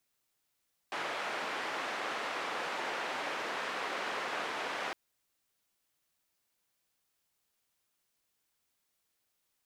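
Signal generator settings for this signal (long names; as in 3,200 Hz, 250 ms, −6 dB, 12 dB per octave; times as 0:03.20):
band-limited noise 390–1,800 Hz, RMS −37 dBFS 4.01 s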